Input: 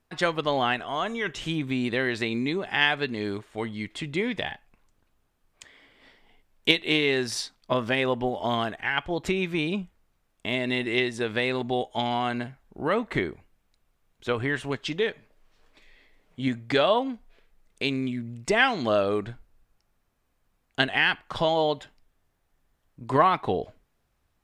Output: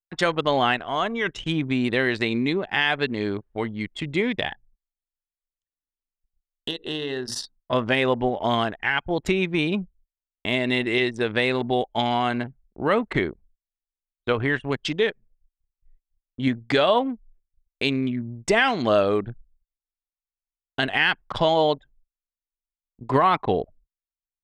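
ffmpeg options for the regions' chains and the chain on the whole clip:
-filter_complex "[0:a]asettb=1/sr,asplit=3[a][b][c];[a]atrim=end=4.514[d];[b]atrim=start=4.51:end=7.73,asetpts=PTS-STARTPTS,afade=t=in:d=0.004:c=qsin,afade=t=out:st=3.216:d=0.004:c=qsin,asuperstop=centerf=2300:order=4:qfactor=3.1,bandreject=f=60:t=h:w=6,bandreject=f=120:t=h:w=6,bandreject=f=180:t=h:w=6,bandreject=f=240:t=h:w=6,bandreject=f=300:t=h:w=6,bandreject=f=360:t=h:w=6,bandreject=f=420:t=h:w=6,bandreject=f=480:t=h:w=6,acompressor=threshold=-31dB:ratio=3:attack=3.2:release=140:knee=1:detection=peak[e];[c]atrim=start=7.726[f];[d][e]acrossfade=d=0.004:c1=hsin:c2=qsin[g];[g][f]acrossfade=d=0.004:c1=qsin:c2=hsin,anlmdn=3.98,agate=range=-29dB:threshold=-57dB:ratio=16:detection=peak,alimiter=level_in=11.5dB:limit=-1dB:release=50:level=0:latency=1,volume=-7.5dB"

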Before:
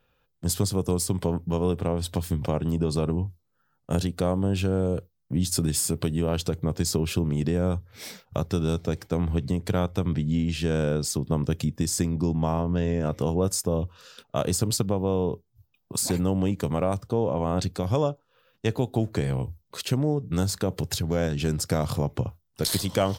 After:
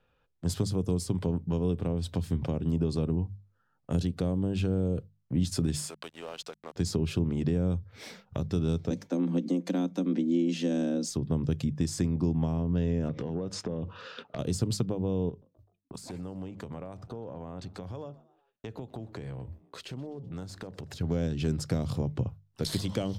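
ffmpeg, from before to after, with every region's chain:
-filter_complex "[0:a]asettb=1/sr,asplit=3[a][b][c];[a]atrim=end=5.864[d];[b]atrim=start=5.86:end=6.76,asetpts=PTS-STARTPTS,afade=t=in:d=0.004:c=qsin,afade=t=out:st=0.896:d=0.004:c=qsin,highpass=800,acrusher=bits=6:mix=0:aa=0.5[e];[c]atrim=start=6.756[f];[d][e]acrossfade=d=0.004:c1=hsin:c2=qsin[g];[g][f]acrossfade=d=0.004:c1=qsin:c2=hsin,asettb=1/sr,asplit=3[h][i][j];[h]atrim=end=8.904[k];[i]atrim=start=8.9:end=11.1,asetpts=PTS-STARTPTS,afade=t=in:d=0.004:c=qsin,afade=t=out:st=2.196:d=0.004:c=qsin,equalizer=f=6.3k:t=o:w=0.21:g=9,aecho=1:1:4.7:0.4,atrim=end_sample=97020,afreqshift=91[l];[j]atrim=start=11.096[m];[k][l]acrossfade=d=0.004:c1=hsin:c2=qsin[n];[n][m]acrossfade=d=0.004:c1=qsin:c2=hsin,asettb=1/sr,asplit=3[o][p][q];[o]atrim=end=13.094[r];[p]atrim=start=13.09:end=14.39,asetpts=PTS-STARTPTS,afade=t=in:d=0.004:c=qsin,afade=t=out:st=1.296:d=0.004:c=qsin,highpass=150,lowpass=3.4k,acompressor=threshold=-34dB:ratio=16:attack=3.2:release=140:knee=1:detection=peak,aeval=exprs='0.1*sin(PI/2*2.24*val(0)/0.1)':c=same[s];[q]atrim=start=14.386[t];[r][s]acrossfade=d=0.004:c1=hsin:c2=qsin[u];[u][t]acrossfade=d=0.004:c1=qsin:c2=hsin,asettb=1/sr,asplit=3[v][w][x];[v]atrim=end=15.294[y];[w]atrim=start=15.29:end=21.01,asetpts=PTS-STARTPTS,afade=t=in:d=0.004:c=qsin,afade=t=out:st=5.716:d=0.004:c=qsin,agate=range=-33dB:threshold=-54dB:ratio=3:release=100:detection=peak,acompressor=threshold=-35dB:ratio=4:attack=3.2:release=140:knee=1:detection=peak,asplit=4[z][aa][ab][ac];[aa]adelay=127,afreqshift=88,volume=-23dB[ad];[ab]adelay=254,afreqshift=176,volume=-28.7dB[ae];[ac]adelay=381,afreqshift=264,volume=-34.4dB[af];[z][ad][ae][af]amix=inputs=4:normalize=0,atrim=end_sample=252252[ag];[x]atrim=start=21.006[ah];[y][ag]acrossfade=d=0.004:c1=hsin:c2=qsin[ai];[ai][ah]acrossfade=d=0.004:c1=qsin:c2=hsin,bandreject=f=50:t=h:w=6,bandreject=f=100:t=h:w=6,bandreject=f=150:t=h:w=6,bandreject=f=200:t=h:w=6,acrossover=split=410|3000[aj][ak][al];[ak]acompressor=threshold=-39dB:ratio=6[am];[aj][am][al]amix=inputs=3:normalize=0,aemphasis=mode=reproduction:type=50fm,volume=-2dB"

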